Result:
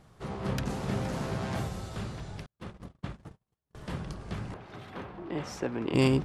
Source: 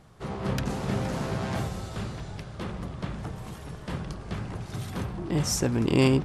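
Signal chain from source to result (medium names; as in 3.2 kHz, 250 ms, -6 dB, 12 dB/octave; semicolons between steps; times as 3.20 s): 2.46–3.75 s: gate -32 dBFS, range -47 dB; 4.54–5.94 s: three-band isolator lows -13 dB, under 260 Hz, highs -20 dB, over 3.6 kHz; trim -3 dB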